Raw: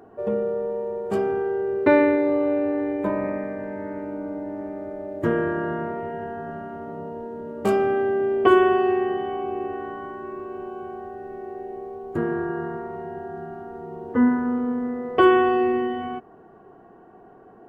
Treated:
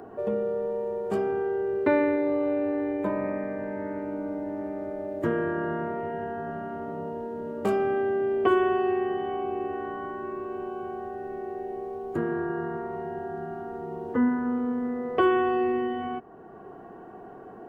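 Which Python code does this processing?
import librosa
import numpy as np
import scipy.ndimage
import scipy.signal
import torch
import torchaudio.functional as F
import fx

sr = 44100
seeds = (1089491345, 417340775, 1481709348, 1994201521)

y = fx.band_squash(x, sr, depth_pct=40)
y = y * 10.0 ** (-3.5 / 20.0)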